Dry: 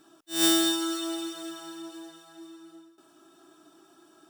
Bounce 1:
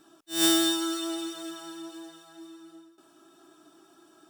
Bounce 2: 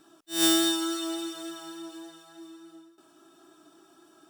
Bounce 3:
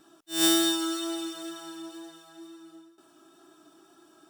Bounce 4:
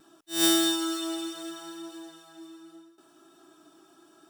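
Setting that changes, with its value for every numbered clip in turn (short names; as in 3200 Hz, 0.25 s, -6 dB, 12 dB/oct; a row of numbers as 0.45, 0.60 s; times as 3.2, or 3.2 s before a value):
vibrato, rate: 8.6, 3.5, 2.1, 0.73 Hz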